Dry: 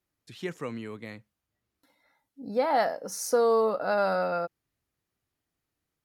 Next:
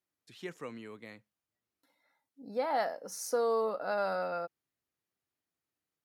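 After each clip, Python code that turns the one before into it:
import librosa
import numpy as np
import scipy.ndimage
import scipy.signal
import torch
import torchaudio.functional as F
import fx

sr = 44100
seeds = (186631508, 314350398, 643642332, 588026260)

y = fx.highpass(x, sr, hz=220.0, slope=6)
y = y * librosa.db_to_amplitude(-6.0)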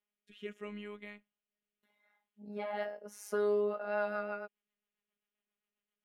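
y = fx.robotise(x, sr, hz=207.0)
y = fx.rotary_switch(y, sr, hz=0.8, then_hz=7.5, switch_at_s=3.33)
y = fx.high_shelf_res(y, sr, hz=3700.0, db=-6.5, q=3.0)
y = y * librosa.db_to_amplitude(2.5)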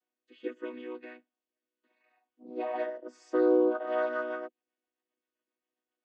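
y = fx.chord_vocoder(x, sr, chord='major triad', root=59)
y = y * librosa.db_to_amplitude(7.0)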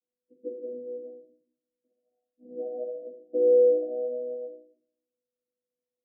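y = scipy.signal.sosfilt(scipy.signal.cheby1(6, 9, 700.0, 'lowpass', fs=sr, output='sos'), x)
y = fx.room_shoebox(y, sr, seeds[0], volume_m3=670.0, walls='furnished', distance_m=2.1)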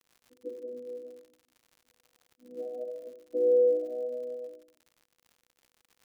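y = fx.dmg_crackle(x, sr, seeds[1], per_s=110.0, level_db=-44.0)
y = y * librosa.db_to_amplitude(-3.5)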